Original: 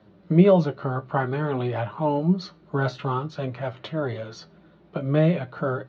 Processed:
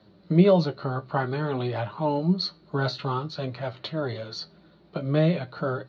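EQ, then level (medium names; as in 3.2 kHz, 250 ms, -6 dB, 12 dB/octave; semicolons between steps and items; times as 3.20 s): peaking EQ 4.3 kHz +14 dB 0.4 oct; -2.0 dB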